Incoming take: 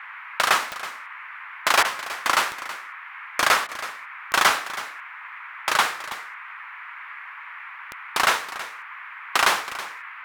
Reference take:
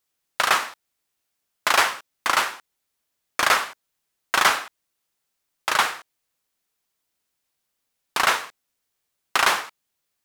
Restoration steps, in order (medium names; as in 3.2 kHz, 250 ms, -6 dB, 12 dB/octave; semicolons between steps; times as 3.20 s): de-click; interpolate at 1.83/3.67 s, 16 ms; noise print and reduce 30 dB; inverse comb 324 ms -14.5 dB